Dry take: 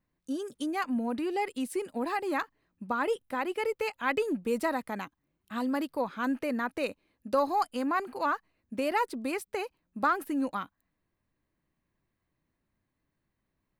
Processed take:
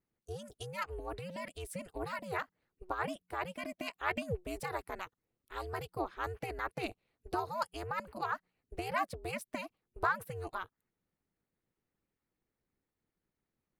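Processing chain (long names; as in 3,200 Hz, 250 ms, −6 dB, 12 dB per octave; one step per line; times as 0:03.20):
ring modulation 180 Hz
harmonic and percussive parts rebalanced harmonic −9 dB
level −1 dB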